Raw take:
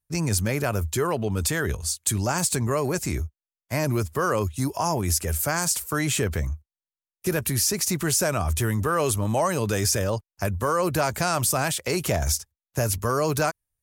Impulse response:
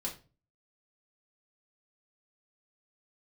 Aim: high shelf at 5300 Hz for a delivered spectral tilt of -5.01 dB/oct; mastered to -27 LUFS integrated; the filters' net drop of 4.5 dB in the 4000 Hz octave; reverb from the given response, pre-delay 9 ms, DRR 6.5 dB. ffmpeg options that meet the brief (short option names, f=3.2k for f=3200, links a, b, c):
-filter_complex "[0:a]equalizer=f=4k:t=o:g=-3,highshelf=f=5.3k:g=-5.5,asplit=2[a][b];[1:a]atrim=start_sample=2205,adelay=9[c];[b][c]afir=irnorm=-1:irlink=0,volume=-7.5dB[d];[a][d]amix=inputs=2:normalize=0,volume=-2dB"